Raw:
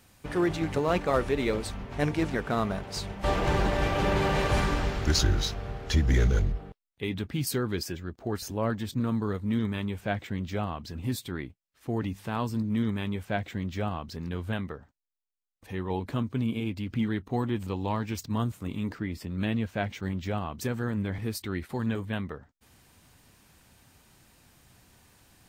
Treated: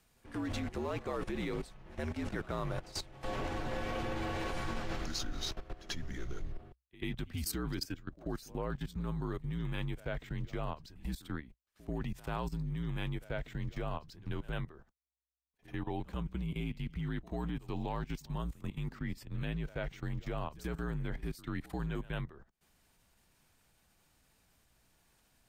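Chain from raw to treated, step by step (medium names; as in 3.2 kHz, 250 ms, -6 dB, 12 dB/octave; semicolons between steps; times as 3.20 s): level held to a coarse grid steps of 17 dB; pre-echo 89 ms -19.5 dB; frequency shift -64 Hz; trim -2 dB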